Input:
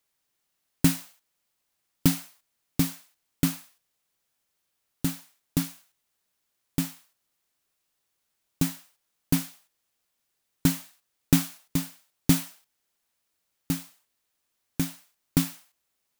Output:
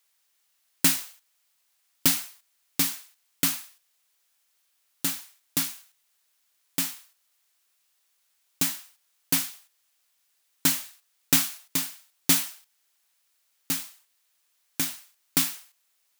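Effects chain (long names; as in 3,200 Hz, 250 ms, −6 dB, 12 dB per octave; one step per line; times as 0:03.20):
high-pass filter 1,400 Hz 6 dB per octave
level +7.5 dB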